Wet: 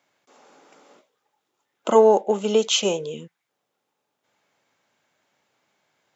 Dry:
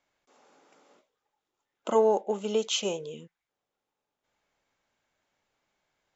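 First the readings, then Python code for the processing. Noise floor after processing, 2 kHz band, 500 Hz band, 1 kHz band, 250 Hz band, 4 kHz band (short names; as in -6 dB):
-79 dBFS, +8.0 dB, +8.0 dB, +8.0 dB, +8.0 dB, +8.0 dB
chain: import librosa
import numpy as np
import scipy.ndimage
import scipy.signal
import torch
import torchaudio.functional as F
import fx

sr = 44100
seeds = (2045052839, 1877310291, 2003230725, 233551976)

y = scipy.signal.sosfilt(scipy.signal.butter(4, 110.0, 'highpass', fs=sr, output='sos'), x)
y = y * librosa.db_to_amplitude(8.0)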